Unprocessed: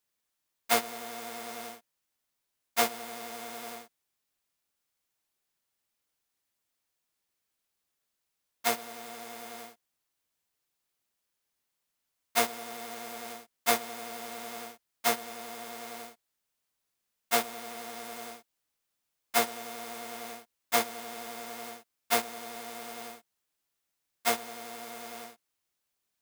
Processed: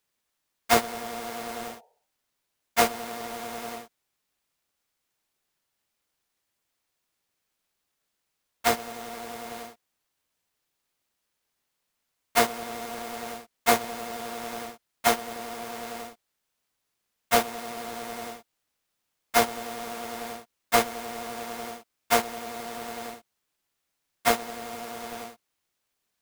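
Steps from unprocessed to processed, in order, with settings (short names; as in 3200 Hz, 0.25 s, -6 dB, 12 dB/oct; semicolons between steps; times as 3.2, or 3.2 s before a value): half-waves squared off; spectral repair 1.71–2.1, 390–950 Hz both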